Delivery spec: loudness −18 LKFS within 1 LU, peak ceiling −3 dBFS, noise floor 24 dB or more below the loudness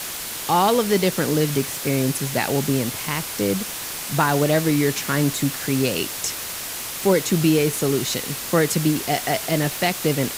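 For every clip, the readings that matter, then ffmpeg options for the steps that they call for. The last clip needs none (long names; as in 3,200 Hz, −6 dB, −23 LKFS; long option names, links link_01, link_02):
background noise floor −31 dBFS; target noise floor −46 dBFS; integrated loudness −21.5 LKFS; sample peak −5.5 dBFS; target loudness −18.0 LKFS
→ -af "afftdn=noise_reduction=15:noise_floor=-31"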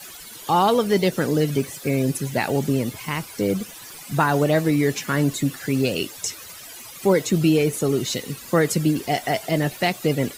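background noise floor −40 dBFS; target noise floor −46 dBFS
→ -af "afftdn=noise_reduction=6:noise_floor=-40"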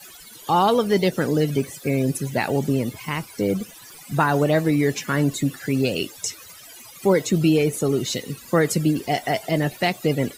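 background noise floor −44 dBFS; target noise floor −46 dBFS
→ -af "afftdn=noise_reduction=6:noise_floor=-44"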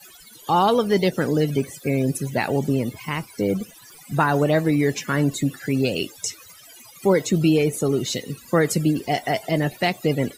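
background noise floor −47 dBFS; integrated loudness −22.5 LKFS; sample peak −6.0 dBFS; target loudness −18.0 LKFS
→ -af "volume=4.5dB,alimiter=limit=-3dB:level=0:latency=1"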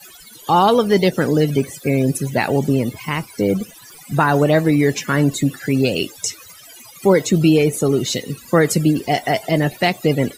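integrated loudness −18.0 LKFS; sample peak −3.0 dBFS; background noise floor −42 dBFS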